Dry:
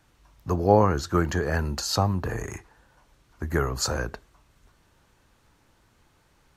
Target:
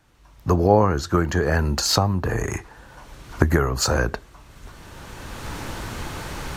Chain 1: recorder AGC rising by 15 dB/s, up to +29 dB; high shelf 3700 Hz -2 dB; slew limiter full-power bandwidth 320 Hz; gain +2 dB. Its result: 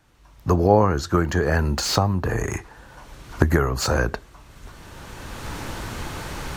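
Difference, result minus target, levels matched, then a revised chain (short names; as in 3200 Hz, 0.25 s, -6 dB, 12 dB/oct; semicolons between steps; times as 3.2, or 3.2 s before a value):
slew limiter: distortion +10 dB
recorder AGC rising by 15 dB/s, up to +29 dB; high shelf 3700 Hz -2 dB; slew limiter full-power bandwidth 724.5 Hz; gain +2 dB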